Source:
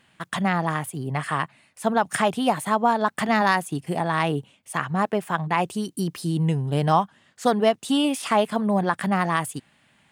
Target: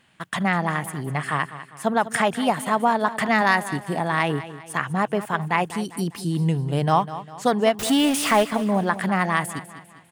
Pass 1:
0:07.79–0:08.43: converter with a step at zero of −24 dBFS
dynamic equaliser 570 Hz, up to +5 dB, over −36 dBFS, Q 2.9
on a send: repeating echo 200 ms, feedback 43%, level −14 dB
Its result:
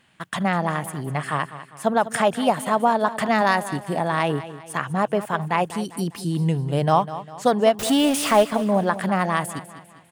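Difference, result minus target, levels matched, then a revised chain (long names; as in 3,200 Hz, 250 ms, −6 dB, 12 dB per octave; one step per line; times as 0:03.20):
2,000 Hz band −3.5 dB
0:07.79–0:08.43: converter with a step at zero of −24 dBFS
dynamic equaliser 2,000 Hz, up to +5 dB, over −36 dBFS, Q 2.9
on a send: repeating echo 200 ms, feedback 43%, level −14 dB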